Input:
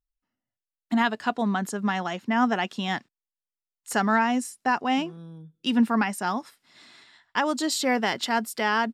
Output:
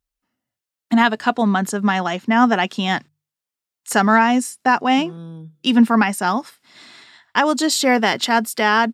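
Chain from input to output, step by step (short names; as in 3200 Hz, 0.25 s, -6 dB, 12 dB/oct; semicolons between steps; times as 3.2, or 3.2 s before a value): HPF 41 Hz; notches 50/100/150 Hz; gain +8 dB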